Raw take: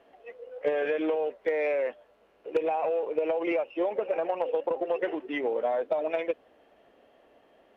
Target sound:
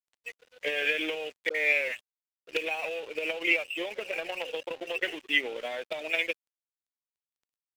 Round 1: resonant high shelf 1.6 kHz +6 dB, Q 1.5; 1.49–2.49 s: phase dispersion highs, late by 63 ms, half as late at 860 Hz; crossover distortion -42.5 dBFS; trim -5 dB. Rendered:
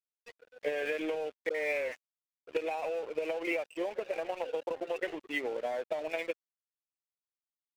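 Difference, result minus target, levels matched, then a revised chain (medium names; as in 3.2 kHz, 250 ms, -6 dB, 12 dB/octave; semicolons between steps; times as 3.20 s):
4 kHz band -8.0 dB
resonant high shelf 1.6 kHz +18 dB, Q 1.5; 1.49–2.49 s: phase dispersion highs, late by 63 ms, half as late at 860 Hz; crossover distortion -42.5 dBFS; trim -5 dB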